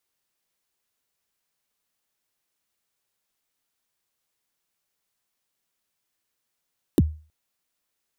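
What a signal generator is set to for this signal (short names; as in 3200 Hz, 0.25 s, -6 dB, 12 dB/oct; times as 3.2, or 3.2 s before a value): kick drum length 0.32 s, from 400 Hz, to 77 Hz, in 35 ms, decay 0.36 s, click on, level -10 dB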